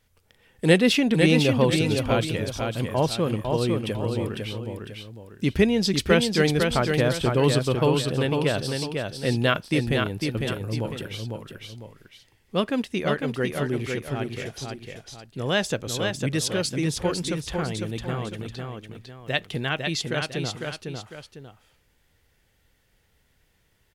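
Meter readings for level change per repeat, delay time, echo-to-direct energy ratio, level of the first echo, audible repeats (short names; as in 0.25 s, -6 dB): -8.5 dB, 0.502 s, -4.0 dB, -4.5 dB, 2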